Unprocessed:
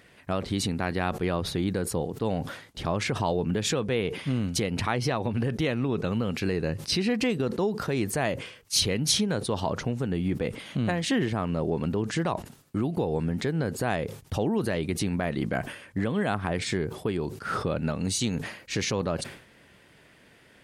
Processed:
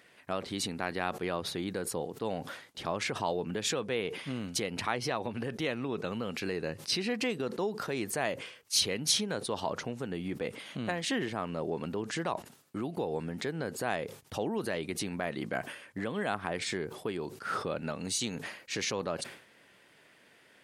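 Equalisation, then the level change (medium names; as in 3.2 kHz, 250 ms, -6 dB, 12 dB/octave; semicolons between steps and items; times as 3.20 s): high-pass 370 Hz 6 dB/octave; -3.0 dB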